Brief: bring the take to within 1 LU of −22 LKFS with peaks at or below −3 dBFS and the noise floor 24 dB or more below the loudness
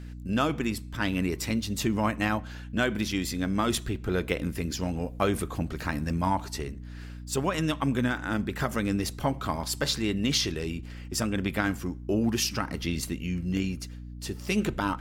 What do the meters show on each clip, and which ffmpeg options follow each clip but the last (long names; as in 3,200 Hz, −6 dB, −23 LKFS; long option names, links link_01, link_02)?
mains hum 60 Hz; hum harmonics up to 300 Hz; level of the hum −38 dBFS; integrated loudness −29.5 LKFS; sample peak −11.0 dBFS; target loudness −22.0 LKFS
→ -af "bandreject=frequency=60:width_type=h:width=4,bandreject=frequency=120:width_type=h:width=4,bandreject=frequency=180:width_type=h:width=4,bandreject=frequency=240:width_type=h:width=4,bandreject=frequency=300:width_type=h:width=4"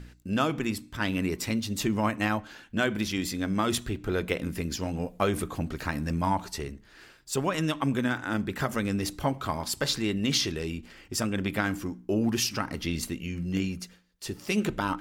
mains hum none found; integrated loudness −29.5 LKFS; sample peak −12.0 dBFS; target loudness −22.0 LKFS
→ -af "volume=7.5dB"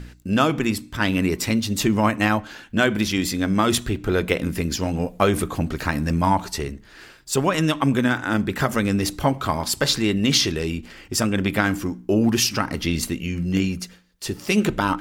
integrated loudness −22.0 LKFS; sample peak −4.5 dBFS; background noise floor −48 dBFS